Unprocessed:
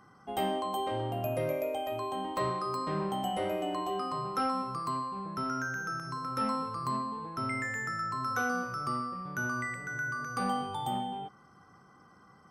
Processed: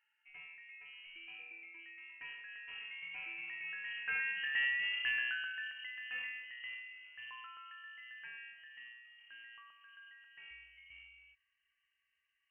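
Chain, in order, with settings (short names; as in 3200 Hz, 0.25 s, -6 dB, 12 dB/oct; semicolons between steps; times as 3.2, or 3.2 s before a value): Doppler pass-by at 4.82, 23 m/s, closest 7 m; inverted band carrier 3000 Hz; gain +2 dB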